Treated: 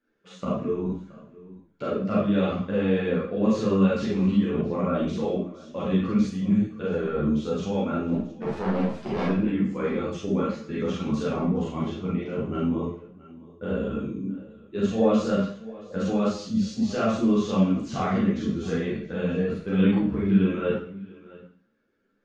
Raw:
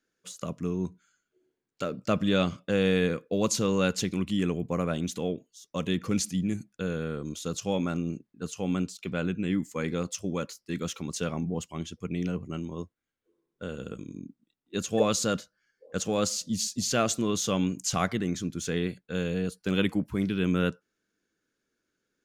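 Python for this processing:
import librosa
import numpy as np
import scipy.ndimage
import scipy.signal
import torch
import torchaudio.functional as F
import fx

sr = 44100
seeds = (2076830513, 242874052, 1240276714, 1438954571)

p1 = fx.self_delay(x, sr, depth_ms=0.95, at=(8.08, 9.26))
p2 = fx.low_shelf(p1, sr, hz=110.0, db=-5.5)
p3 = fx.over_compress(p2, sr, threshold_db=-34.0, ratio=-1.0)
p4 = p2 + F.gain(torch.from_numpy(p3), 0.5).numpy()
p5 = fx.spacing_loss(p4, sr, db_at_10k=37)
p6 = p5 + fx.echo_single(p5, sr, ms=672, db=-20.0, dry=0)
p7 = fx.rev_schroeder(p6, sr, rt60_s=0.51, comb_ms=28, drr_db=-5.5)
y = fx.ensemble(p7, sr)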